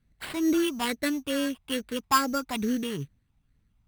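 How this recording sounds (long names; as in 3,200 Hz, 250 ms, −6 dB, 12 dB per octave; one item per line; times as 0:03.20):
phaser sweep stages 8, 2.3 Hz, lowest notch 470–1,100 Hz
aliases and images of a low sample rate 6,100 Hz, jitter 0%
Opus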